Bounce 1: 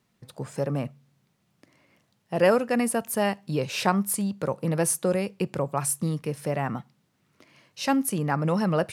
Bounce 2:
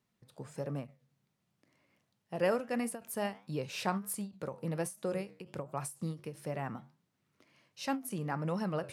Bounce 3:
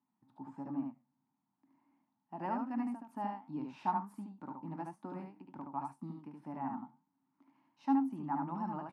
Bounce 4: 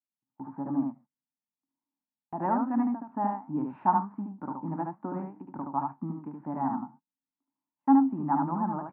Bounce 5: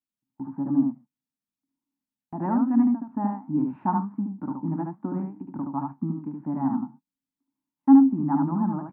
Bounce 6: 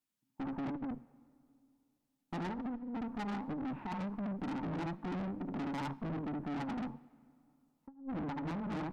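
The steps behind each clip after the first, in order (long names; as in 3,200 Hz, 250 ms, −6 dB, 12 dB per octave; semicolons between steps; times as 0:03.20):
flanger 1.4 Hz, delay 6.9 ms, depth 5 ms, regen −84%; every ending faded ahead of time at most 210 dB per second; level −5.5 dB
pair of resonant band-passes 490 Hz, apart 1.7 octaves; single-tap delay 73 ms −3.5 dB; level +6.5 dB
automatic gain control gain up to 4.5 dB; low-pass filter 1,600 Hz 24 dB per octave; noise gate −54 dBFS, range −30 dB; level +5 dB
low shelf with overshoot 370 Hz +7 dB, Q 1.5; level −1.5 dB
compressor whose output falls as the input rises −28 dBFS, ratio −0.5; tube saturation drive 38 dB, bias 0.55; on a send at −21 dB: convolution reverb RT60 2.6 s, pre-delay 32 ms; on the sum: level +1.5 dB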